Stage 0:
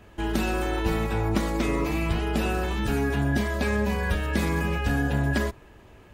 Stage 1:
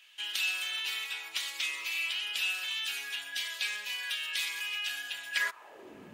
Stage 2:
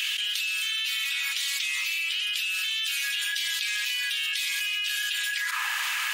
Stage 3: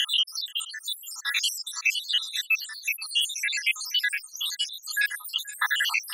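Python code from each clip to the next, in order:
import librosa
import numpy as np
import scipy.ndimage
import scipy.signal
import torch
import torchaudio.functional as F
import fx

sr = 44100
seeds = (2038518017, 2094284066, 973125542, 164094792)

y1 = fx.filter_sweep_highpass(x, sr, from_hz=3000.0, to_hz=200.0, start_s=5.31, end_s=6.0, q=2.6)
y2 = scipy.signal.sosfilt(scipy.signal.bessel(8, 2100.0, 'highpass', norm='mag', fs=sr, output='sos'), y1)
y2 = fx.env_flatten(y2, sr, amount_pct=100)
y2 = F.gain(torch.from_numpy(y2), 1.0).numpy()
y3 = fx.spec_dropout(y2, sr, seeds[0], share_pct=85)
y3 = fx.peak_eq(y3, sr, hz=2300.0, db=3.5, octaves=0.85)
y3 = y3 + 10.0 ** (-19.5 / 20.0) * np.pad(y3, (int(479 * sr / 1000.0), 0))[:len(y3)]
y3 = F.gain(torch.from_numpy(y3), 7.5).numpy()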